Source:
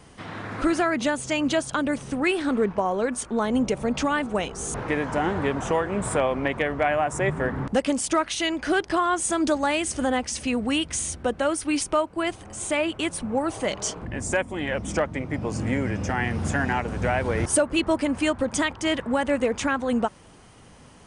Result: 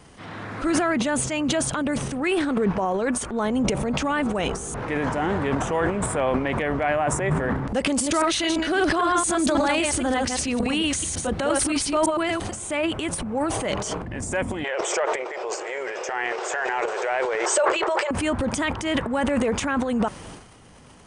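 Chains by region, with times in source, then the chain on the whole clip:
7.88–12.53 reverse delay 0.113 s, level -3.5 dB + bell 4200 Hz +6 dB 0.48 oct
14.64–18.11 brick-wall FIR band-pass 350–8400 Hz + backwards sustainer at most 36 dB/s
whole clip: transient shaper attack -4 dB, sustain +11 dB; dynamic EQ 5000 Hz, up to -4 dB, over -38 dBFS, Q 1.1

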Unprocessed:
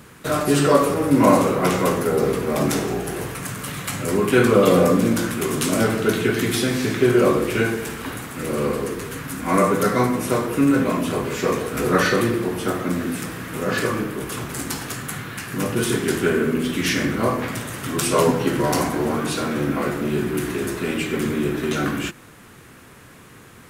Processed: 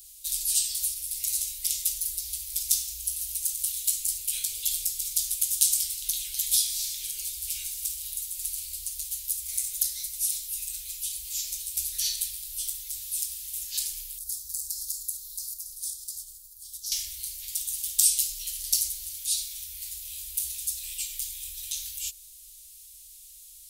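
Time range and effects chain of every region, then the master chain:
14.18–16.92 elliptic band-stop 280–4500 Hz, stop band 50 dB + compressor 4:1, threshold -32 dBFS
whole clip: dynamic EQ 490 Hz, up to +7 dB, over -32 dBFS, Q 1.6; inverse Chebyshev band-stop 140–1300 Hz, stop band 60 dB; high shelf 8400 Hz +11.5 dB

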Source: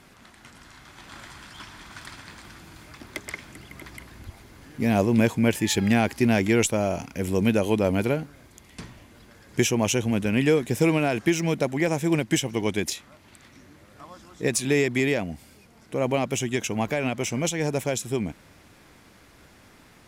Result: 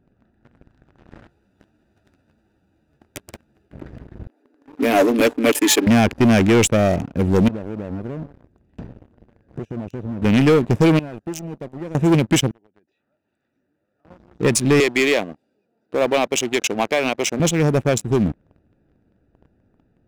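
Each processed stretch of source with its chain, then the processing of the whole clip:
1.28–3.71 spectral whitening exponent 0.3 + ensemble effect
4.27–5.87 steep high-pass 240 Hz 72 dB/oct + high shelf 8100 Hz +8.5 dB + comb 6.9 ms, depth 62%
7.48–10.22 compressor 4:1, threshold -35 dBFS + core saturation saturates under 340 Hz
10.99–11.95 pre-emphasis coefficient 0.8 + core saturation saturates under 1200 Hz
12.51–14.05 treble ducked by the level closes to 2000 Hz, closed at -23.5 dBFS + compressor 3:1, threshold -44 dBFS + HPF 1200 Hz 6 dB/oct
14.8–17.4 HPF 380 Hz + bell 4200 Hz +6 dB 0.9 oct
whole clip: Wiener smoothing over 41 samples; tone controls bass +1 dB, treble -3 dB; sample leveller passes 3

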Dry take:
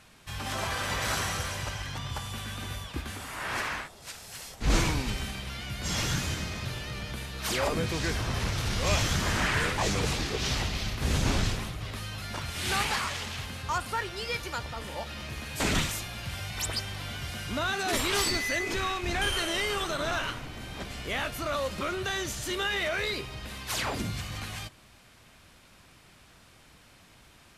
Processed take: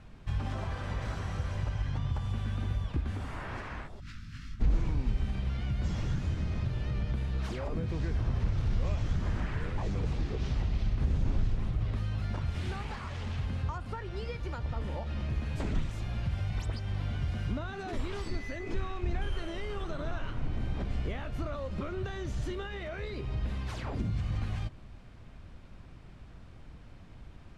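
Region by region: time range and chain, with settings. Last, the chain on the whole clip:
4–4.6 median filter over 5 samples + elliptic band-stop 280–1300 Hz, stop band 50 dB + doubler 19 ms -5 dB
whole clip: Bessel low-pass 7800 Hz, order 2; compressor, threshold -36 dBFS; tilt -3.5 dB/oct; gain -2 dB

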